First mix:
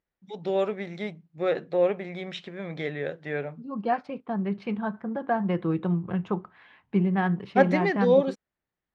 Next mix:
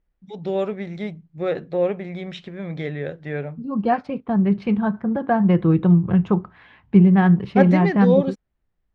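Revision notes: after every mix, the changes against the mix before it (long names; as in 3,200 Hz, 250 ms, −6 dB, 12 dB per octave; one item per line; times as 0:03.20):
second voice +4.5 dB
master: remove high-pass filter 360 Hz 6 dB per octave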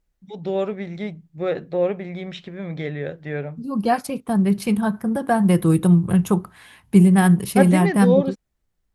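second voice: remove Bessel low-pass filter 2,300 Hz, order 4
master: add high-shelf EQ 8,900 Hz +5 dB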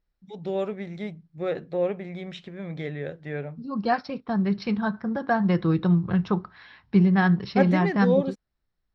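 first voice −4.5 dB
second voice: add Chebyshev low-pass with heavy ripple 5,600 Hz, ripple 6 dB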